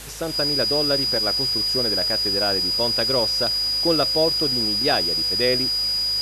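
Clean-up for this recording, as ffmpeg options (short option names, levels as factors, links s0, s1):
-af "adeclick=t=4,bandreject=f=52.3:t=h:w=4,bandreject=f=104.6:t=h:w=4,bandreject=f=156.9:t=h:w=4,bandreject=f=4900:w=30,afwtdn=0.014"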